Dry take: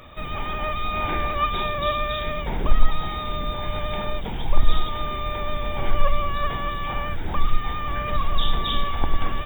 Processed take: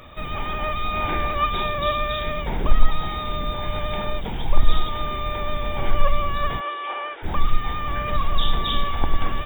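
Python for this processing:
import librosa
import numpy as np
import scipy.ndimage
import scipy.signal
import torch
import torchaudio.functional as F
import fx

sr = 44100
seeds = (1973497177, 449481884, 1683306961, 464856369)

y = fx.ellip_bandpass(x, sr, low_hz=370.0, high_hz=3200.0, order=3, stop_db=40, at=(6.59, 7.22), fade=0.02)
y = F.gain(torch.from_numpy(y), 1.0).numpy()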